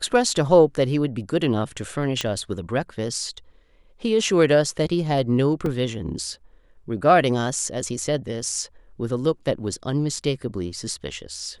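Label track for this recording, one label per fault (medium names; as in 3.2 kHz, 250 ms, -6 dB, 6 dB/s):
2.210000	2.210000	pop -9 dBFS
5.660000	5.660000	dropout 2.4 ms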